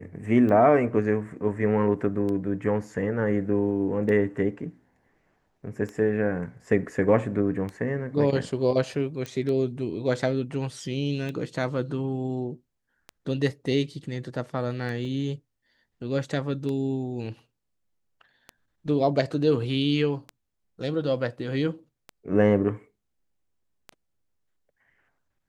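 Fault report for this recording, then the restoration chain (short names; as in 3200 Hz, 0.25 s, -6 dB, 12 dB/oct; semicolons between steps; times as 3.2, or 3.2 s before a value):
tick 33 1/3 rpm -22 dBFS
9.26 pop -20 dBFS
15.05 gap 2.2 ms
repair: de-click; interpolate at 15.05, 2.2 ms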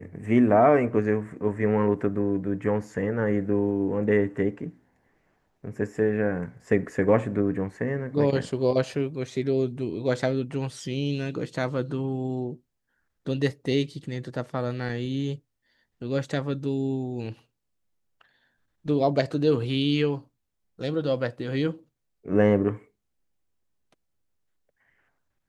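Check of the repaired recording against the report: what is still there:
none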